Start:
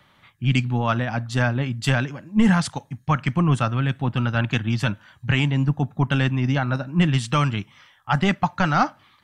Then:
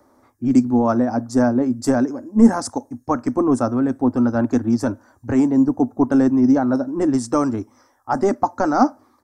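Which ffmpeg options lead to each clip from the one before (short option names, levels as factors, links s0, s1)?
-af "firequalizer=gain_entry='entry(100,0);entry(170,-19);entry(240,14);entry(3000,-26);entry(5200,5)':delay=0.05:min_phase=1,volume=0.841"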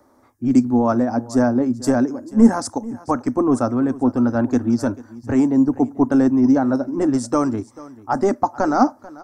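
-af "aecho=1:1:440:0.106"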